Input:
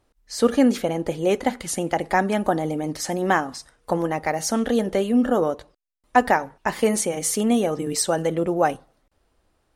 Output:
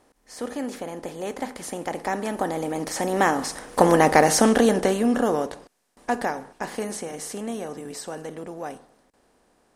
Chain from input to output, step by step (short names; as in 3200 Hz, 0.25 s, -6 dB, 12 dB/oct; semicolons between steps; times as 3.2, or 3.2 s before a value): per-bin compression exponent 0.6; Doppler pass-by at 4.08, 10 m/s, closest 4.3 m; gain +3.5 dB